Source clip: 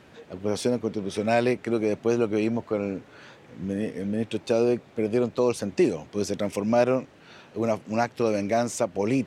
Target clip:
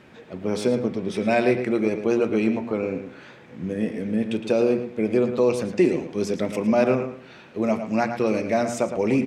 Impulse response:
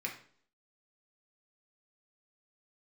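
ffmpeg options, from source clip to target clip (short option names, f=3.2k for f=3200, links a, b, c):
-filter_complex "[0:a]bass=f=250:g=2,treble=f=4k:g=-5,asplit=2[a][b];[b]adelay=111,lowpass=f=4.2k:p=1,volume=-8.5dB,asplit=2[c][d];[d]adelay=111,lowpass=f=4.2k:p=1,volume=0.24,asplit=2[e][f];[f]adelay=111,lowpass=f=4.2k:p=1,volume=0.24[g];[a][c][e][g]amix=inputs=4:normalize=0,asplit=2[h][i];[1:a]atrim=start_sample=2205[j];[i][j]afir=irnorm=-1:irlink=0,volume=-7.5dB[k];[h][k]amix=inputs=2:normalize=0"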